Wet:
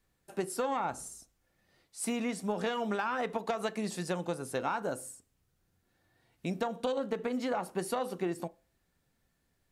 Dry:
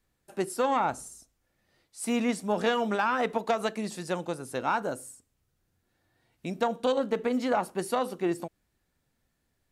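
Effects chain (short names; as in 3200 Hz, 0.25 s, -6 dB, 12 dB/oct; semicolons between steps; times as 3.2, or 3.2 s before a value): compressor, threshold -29 dBFS, peak gain reduction 8 dB; on a send: reverb RT60 0.35 s, pre-delay 3 ms, DRR 13 dB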